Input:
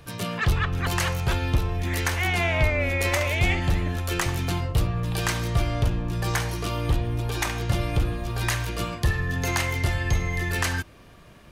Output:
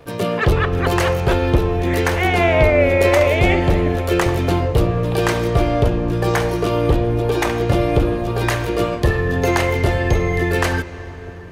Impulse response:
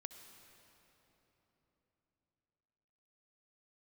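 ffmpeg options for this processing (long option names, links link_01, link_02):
-filter_complex "[0:a]aeval=exprs='sgn(val(0))*max(abs(val(0))-0.00237,0)':channel_layout=same,equalizer=frequency=450:width_type=o:width=1.5:gain=12.5,asplit=2[link_01][link_02];[1:a]atrim=start_sample=2205,asetrate=28665,aresample=44100,lowpass=4800[link_03];[link_02][link_03]afir=irnorm=-1:irlink=0,volume=-2dB[link_04];[link_01][link_04]amix=inputs=2:normalize=0,volume=1dB"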